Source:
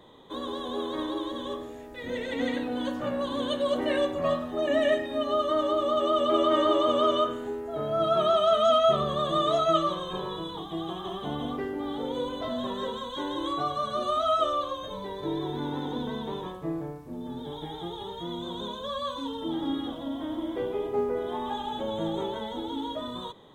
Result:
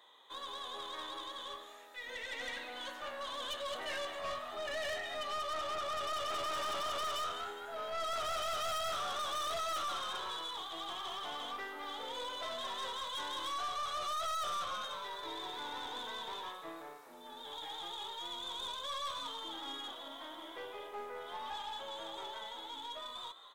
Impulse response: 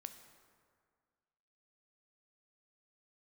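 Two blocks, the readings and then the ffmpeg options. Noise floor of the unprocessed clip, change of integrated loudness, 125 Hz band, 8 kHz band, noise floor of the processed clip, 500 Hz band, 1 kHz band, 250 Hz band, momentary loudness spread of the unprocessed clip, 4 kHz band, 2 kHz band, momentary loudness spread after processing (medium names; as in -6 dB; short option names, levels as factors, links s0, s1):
-40 dBFS, -11.0 dB, -22.0 dB, no reading, -51 dBFS, -17.5 dB, -8.5 dB, -24.5 dB, 13 LU, -4.0 dB, -3.0 dB, 9 LU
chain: -filter_complex "[0:a]highpass=1100,dynaudnorm=f=850:g=11:m=1.58,asplit=5[s0][s1][s2][s3][s4];[s1]adelay=206,afreqshift=85,volume=0.224[s5];[s2]adelay=412,afreqshift=170,volume=0.0832[s6];[s3]adelay=618,afreqshift=255,volume=0.0305[s7];[s4]adelay=824,afreqshift=340,volume=0.0114[s8];[s0][s5][s6][s7][s8]amix=inputs=5:normalize=0,aeval=exprs='(tanh(50.1*val(0)+0.3)-tanh(0.3))/50.1':c=same,volume=0.841"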